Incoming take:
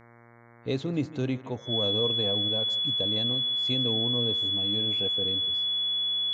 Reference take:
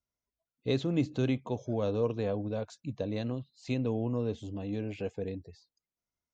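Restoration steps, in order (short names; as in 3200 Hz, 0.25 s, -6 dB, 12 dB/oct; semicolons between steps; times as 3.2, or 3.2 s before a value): de-hum 117.7 Hz, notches 19; notch 3400 Hz, Q 30; inverse comb 0.157 s -17 dB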